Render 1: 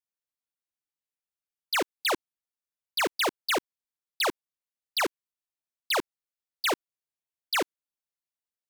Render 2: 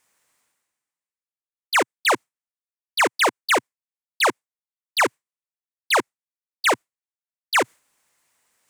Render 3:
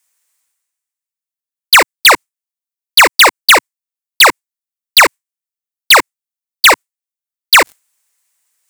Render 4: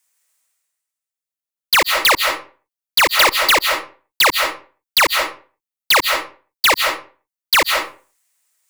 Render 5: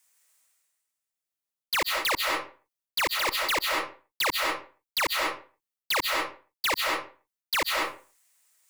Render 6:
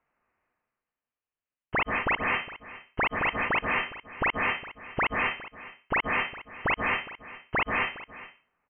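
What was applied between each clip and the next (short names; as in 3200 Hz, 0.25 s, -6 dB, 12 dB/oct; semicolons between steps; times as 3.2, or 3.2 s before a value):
gate with hold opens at -27 dBFS; graphic EQ 125/250/500/1000/2000/8000 Hz +6/+5/+6/+9/+10/+11 dB; reverse; upward compressor, threshold -35 dBFS; reverse; gain -2 dB
tilt +3.5 dB/oct; sample leveller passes 5; gain +3.5 dB
wavefolder -5 dBFS; on a send at -4 dB: reverb RT60 0.40 s, pre-delay 0.115 s; on the sum: gain -2.5 dB
limiter -11 dBFS, peak gain reduction 9.5 dB; reverse; compressor 12:1, threshold -24 dBFS, peak gain reduction 10.5 dB; reverse
echo 0.412 s -17 dB; inverted band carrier 3100 Hz; gain +1 dB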